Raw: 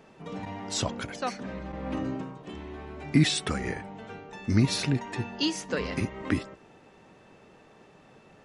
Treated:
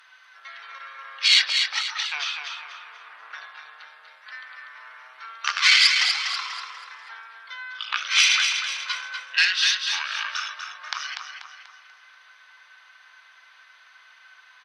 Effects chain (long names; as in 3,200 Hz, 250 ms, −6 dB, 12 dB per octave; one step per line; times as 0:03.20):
wrong playback speed 78 rpm record played at 45 rpm
harmonic generator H 3 −14 dB, 4 −14 dB, 5 −18 dB, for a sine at −10.5 dBFS
on a send: repeating echo 243 ms, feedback 40%, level −6.5 dB
on the sum: dynamic equaliser 4,700 Hz, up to +7 dB, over −52 dBFS, Q 1
in parallel at 0 dB: downward compressor, threshold −35 dBFS, peak gain reduction 18.5 dB
on the sum: high-pass filter 1,400 Hz 24 dB per octave
level +8 dB